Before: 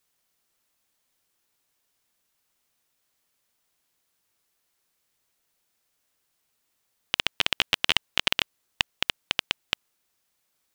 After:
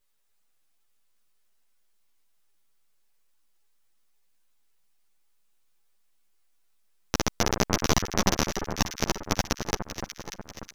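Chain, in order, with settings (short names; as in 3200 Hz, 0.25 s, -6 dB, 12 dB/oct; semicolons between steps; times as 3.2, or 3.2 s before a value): full-wave rectifier; echo with dull and thin repeats by turns 0.295 s, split 1600 Hz, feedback 69%, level -6 dB; ensemble effect; gain +3.5 dB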